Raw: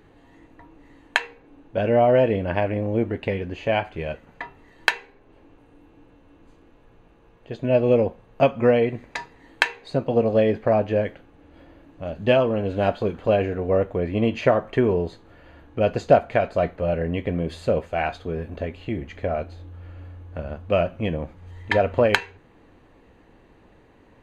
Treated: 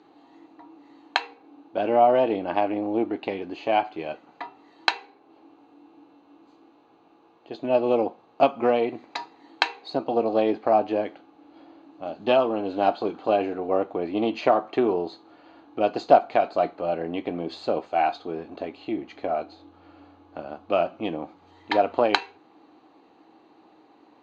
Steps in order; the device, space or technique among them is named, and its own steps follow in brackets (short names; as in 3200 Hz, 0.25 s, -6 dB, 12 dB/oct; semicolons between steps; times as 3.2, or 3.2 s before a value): full-range speaker at full volume (Doppler distortion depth 0.12 ms; speaker cabinet 280–6600 Hz, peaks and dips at 310 Hz +10 dB, 520 Hz -4 dB, 780 Hz +10 dB, 1200 Hz +5 dB, 1800 Hz -7 dB, 4200 Hz +9 dB); gain -3 dB